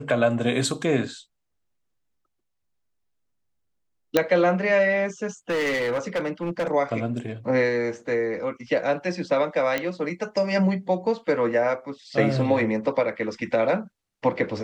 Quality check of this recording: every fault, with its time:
0:04.17: click −5 dBFS
0:05.50–0:06.72: clipping −21.5 dBFS
0:09.78: click −11 dBFS

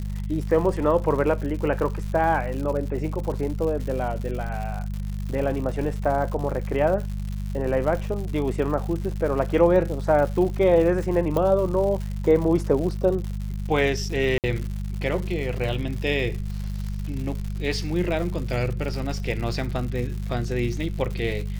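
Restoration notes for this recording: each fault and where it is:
surface crackle 160 per second −31 dBFS
mains hum 50 Hz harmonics 4 −29 dBFS
0:11.37: click −13 dBFS
0:14.38–0:14.44: drop-out 58 ms

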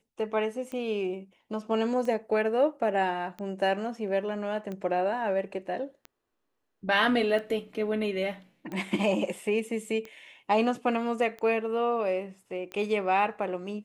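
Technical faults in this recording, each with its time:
scratch tick 45 rpm −25 dBFS

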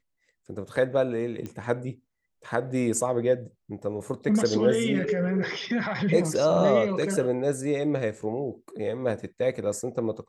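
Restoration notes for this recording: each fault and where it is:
0:01.46: click −23 dBFS

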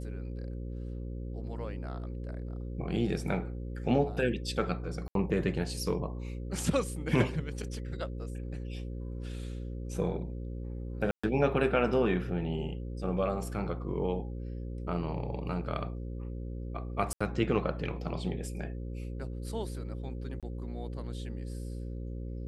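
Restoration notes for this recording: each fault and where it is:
mains buzz 60 Hz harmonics 9 −38 dBFS
0:05.08–0:05.15: drop-out 72 ms
0:11.11–0:11.23: drop-out 125 ms
0:17.13–0:17.20: drop-out 75 ms
0:20.40–0:20.43: drop-out 27 ms

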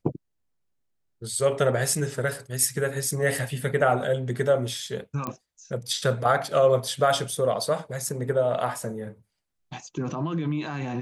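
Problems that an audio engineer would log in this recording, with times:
0:05.27: click −17 dBFS

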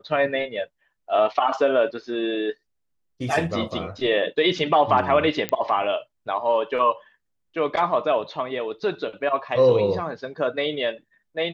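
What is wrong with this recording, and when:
0:05.49: click −10 dBFS

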